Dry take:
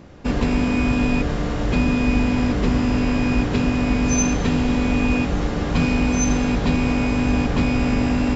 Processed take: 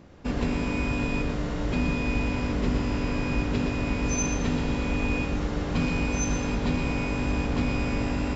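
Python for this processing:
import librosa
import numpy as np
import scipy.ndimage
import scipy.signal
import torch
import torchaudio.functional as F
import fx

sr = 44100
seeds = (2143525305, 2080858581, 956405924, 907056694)

y = x + 10.0 ** (-7.0 / 20.0) * np.pad(x, (int(119 * sr / 1000.0), 0))[:len(x)]
y = y * librosa.db_to_amplitude(-7.0)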